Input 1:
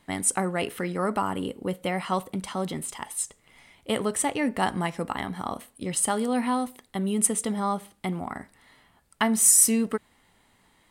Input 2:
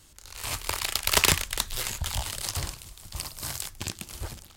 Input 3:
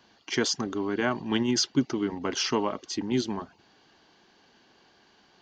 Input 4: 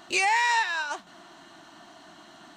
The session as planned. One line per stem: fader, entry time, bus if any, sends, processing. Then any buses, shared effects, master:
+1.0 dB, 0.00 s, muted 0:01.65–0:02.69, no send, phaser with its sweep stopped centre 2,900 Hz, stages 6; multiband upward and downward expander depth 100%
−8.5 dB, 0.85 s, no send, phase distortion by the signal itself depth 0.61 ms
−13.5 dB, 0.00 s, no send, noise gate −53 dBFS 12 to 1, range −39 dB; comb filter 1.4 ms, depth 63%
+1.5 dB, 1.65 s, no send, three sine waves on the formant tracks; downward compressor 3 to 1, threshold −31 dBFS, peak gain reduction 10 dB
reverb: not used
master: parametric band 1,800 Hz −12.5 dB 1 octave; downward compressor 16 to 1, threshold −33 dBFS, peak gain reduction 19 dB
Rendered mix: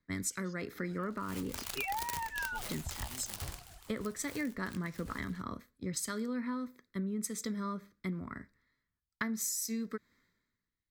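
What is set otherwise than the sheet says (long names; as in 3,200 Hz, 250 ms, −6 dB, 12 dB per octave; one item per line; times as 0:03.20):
stem 3 −13.5 dB → −24.0 dB
master: missing parametric band 1,800 Hz −12.5 dB 1 octave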